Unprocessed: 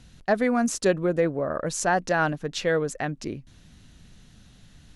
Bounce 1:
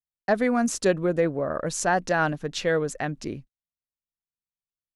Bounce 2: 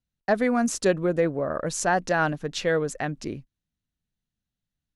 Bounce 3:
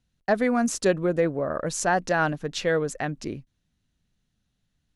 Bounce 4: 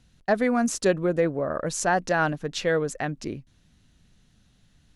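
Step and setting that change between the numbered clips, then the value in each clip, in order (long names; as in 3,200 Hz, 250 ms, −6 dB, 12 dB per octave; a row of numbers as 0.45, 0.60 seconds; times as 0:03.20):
noise gate, range: −57, −35, −23, −9 decibels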